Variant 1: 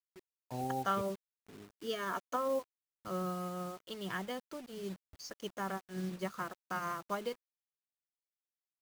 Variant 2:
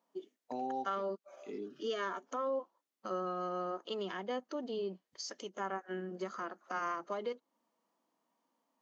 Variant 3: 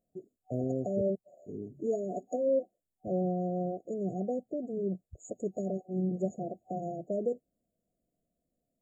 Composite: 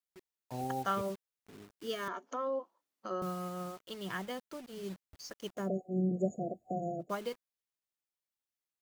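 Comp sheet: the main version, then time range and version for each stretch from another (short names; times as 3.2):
1
2.08–3.22 from 2
5.62–7.07 from 3, crossfade 0.16 s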